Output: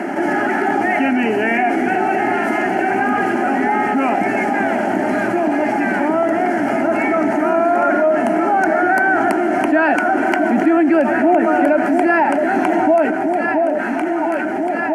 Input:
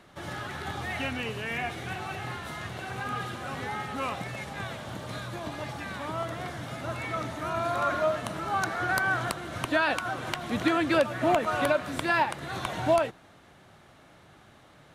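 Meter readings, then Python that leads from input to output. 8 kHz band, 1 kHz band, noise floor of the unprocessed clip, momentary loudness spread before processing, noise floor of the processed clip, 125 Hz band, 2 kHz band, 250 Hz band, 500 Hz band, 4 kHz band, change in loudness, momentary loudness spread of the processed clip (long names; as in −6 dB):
can't be measured, +14.5 dB, −56 dBFS, 11 LU, −20 dBFS, +1.5 dB, +12.5 dB, +18.5 dB, +14.5 dB, 0.0 dB, +14.0 dB, 4 LU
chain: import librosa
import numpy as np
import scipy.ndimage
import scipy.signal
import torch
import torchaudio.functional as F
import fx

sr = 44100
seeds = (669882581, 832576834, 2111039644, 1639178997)

p1 = scipy.signal.sosfilt(scipy.signal.bessel(8, 320.0, 'highpass', norm='mag', fs=sr, output='sos'), x)
p2 = fx.tilt_eq(p1, sr, slope=-4.5)
p3 = fx.fixed_phaser(p2, sr, hz=750.0, stages=8)
p4 = p3 + fx.echo_alternate(p3, sr, ms=672, hz=910.0, feedback_pct=70, wet_db=-11.0, dry=0)
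p5 = fx.env_flatten(p4, sr, amount_pct=70)
y = F.gain(torch.from_numpy(p5), 6.5).numpy()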